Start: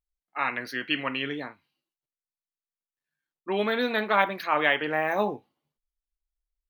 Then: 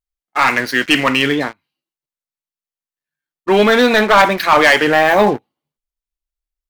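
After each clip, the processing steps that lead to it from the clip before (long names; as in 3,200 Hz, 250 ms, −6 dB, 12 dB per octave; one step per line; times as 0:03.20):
leveller curve on the samples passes 3
level +5.5 dB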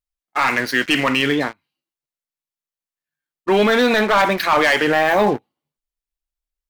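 boost into a limiter +6 dB
level −7.5 dB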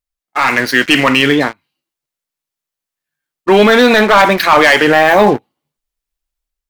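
automatic gain control gain up to 5 dB
level +3 dB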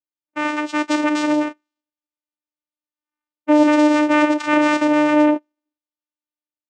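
channel vocoder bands 4, saw 300 Hz
level −6 dB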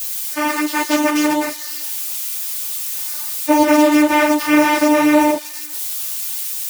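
spike at every zero crossing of −17.5 dBFS
string-ensemble chorus
level +6 dB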